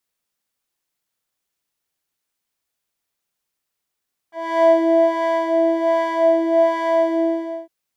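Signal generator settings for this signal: synth patch with filter wobble E5, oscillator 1 triangle, oscillator 2 square, interval 0 st, oscillator 2 level -6.5 dB, sub -2 dB, noise -27.5 dB, filter bandpass, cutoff 300 Hz, Q 2, filter envelope 2.5 oct, filter decay 0.05 s, filter sustain 50%, attack 313 ms, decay 0.55 s, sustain -3.5 dB, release 0.53 s, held 2.83 s, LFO 1.3 Hz, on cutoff 0.6 oct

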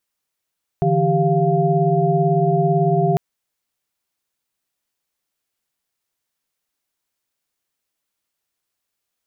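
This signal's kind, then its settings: chord D3/E3/G4/F5 sine, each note -19.5 dBFS 2.35 s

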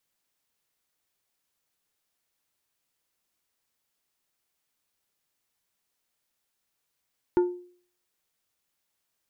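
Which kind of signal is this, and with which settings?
glass hit plate, lowest mode 356 Hz, decay 0.50 s, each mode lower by 11.5 dB, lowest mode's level -15.5 dB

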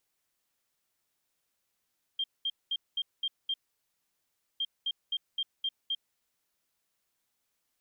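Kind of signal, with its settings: beep pattern sine 3.19 kHz, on 0.05 s, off 0.21 s, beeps 6, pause 1.06 s, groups 2, -28 dBFS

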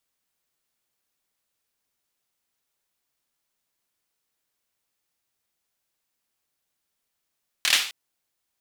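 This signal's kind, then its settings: hand clap length 0.26 s, apart 26 ms, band 2.9 kHz, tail 0.44 s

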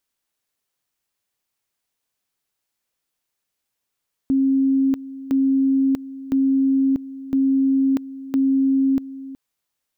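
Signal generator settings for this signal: two-level tone 269 Hz -14.5 dBFS, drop 16.5 dB, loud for 0.64 s, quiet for 0.37 s, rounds 5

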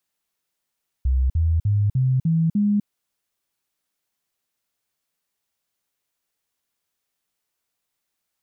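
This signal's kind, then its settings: stepped sine 64.8 Hz up, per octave 3, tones 6, 0.25 s, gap 0.05 s -16 dBFS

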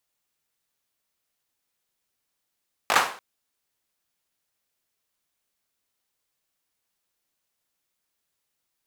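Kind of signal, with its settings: hand clap length 0.29 s, apart 19 ms, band 1 kHz, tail 0.42 s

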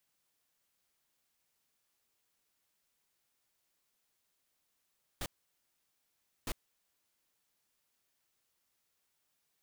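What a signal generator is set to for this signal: noise bursts pink, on 0.05 s, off 1.21 s, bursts 2, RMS -37 dBFS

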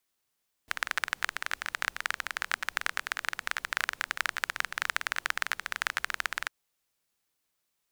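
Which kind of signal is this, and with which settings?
rain from filtered ticks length 5.80 s, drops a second 20, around 1.6 kHz, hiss -23 dB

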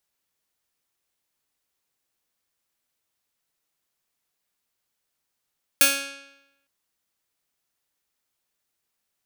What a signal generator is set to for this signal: plucked string C#4, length 0.86 s, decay 0.91 s, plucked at 0.28, bright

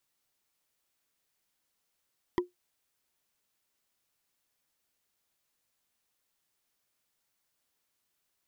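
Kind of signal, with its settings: wood hit, lowest mode 357 Hz, decay 0.15 s, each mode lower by 4.5 dB, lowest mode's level -20 dB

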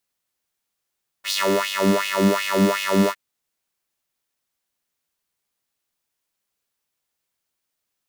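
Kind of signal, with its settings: synth patch with filter wobble G3, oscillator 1 square, oscillator 2 square, interval +12 st, sub -3.5 dB, noise -16 dB, filter highpass, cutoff 690 Hz, Q 2.9, filter envelope 1 oct, filter decay 0.69 s, filter sustain 15%, attack 68 ms, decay 0.16 s, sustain -6 dB, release 0.06 s, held 1.85 s, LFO 2.7 Hz, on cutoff 1.8 oct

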